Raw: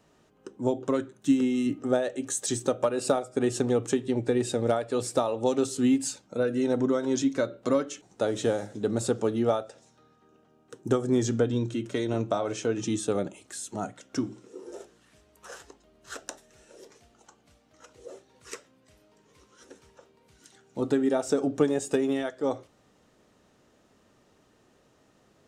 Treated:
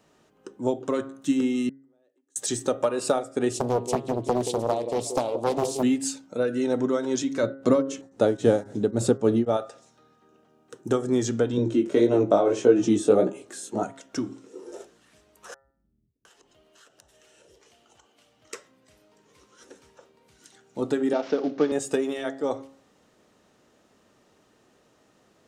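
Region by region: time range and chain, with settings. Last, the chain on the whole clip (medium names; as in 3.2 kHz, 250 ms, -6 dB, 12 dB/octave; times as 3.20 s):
1.69–2.36 s: band-pass filter 300 Hz, Q 3.6 + compression, threshold -38 dBFS + differentiator
3.53–5.83 s: Butterworth band-stop 1.4 kHz, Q 0.71 + repeats whose band climbs or falls 178 ms, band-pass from 410 Hz, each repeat 1.4 oct, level -6.5 dB + loudspeaker Doppler distortion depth 0.87 ms
7.43–9.57 s: bass shelf 500 Hz +10.5 dB + tremolo of two beating tones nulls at 3.7 Hz
11.57–13.83 s: peaking EQ 380 Hz +12 dB 2.7 oct + chorus 1.7 Hz, delay 15 ms, depth 6.1 ms
15.54–18.53 s: peaking EQ 3 kHz +8.5 dB 0.25 oct + compression 12:1, threshold -54 dBFS + bands offset in time lows, highs 710 ms, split 210 Hz
21.13–21.72 s: CVSD coder 32 kbps + high-pass 170 Hz 24 dB/octave + distance through air 110 m
whole clip: bass shelf 110 Hz -8 dB; de-hum 135.5 Hz, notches 15; trim +2 dB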